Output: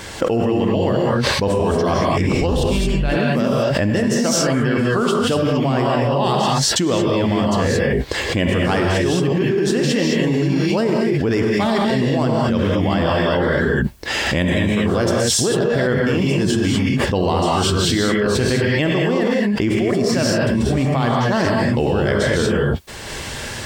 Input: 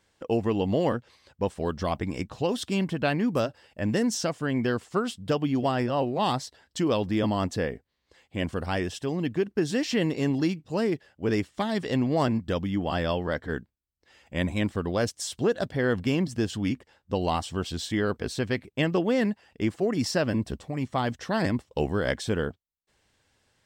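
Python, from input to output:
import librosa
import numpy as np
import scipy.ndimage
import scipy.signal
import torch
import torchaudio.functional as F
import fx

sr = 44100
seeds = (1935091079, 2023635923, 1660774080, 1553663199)

y = fx.octave_divider(x, sr, octaves=2, level_db=4.0, at=(2.32, 2.93))
y = fx.rev_gated(y, sr, seeds[0], gate_ms=250, shape='rising', drr_db=-3.5)
y = fx.env_flatten(y, sr, amount_pct=100)
y = y * 10.0 ** (-4.5 / 20.0)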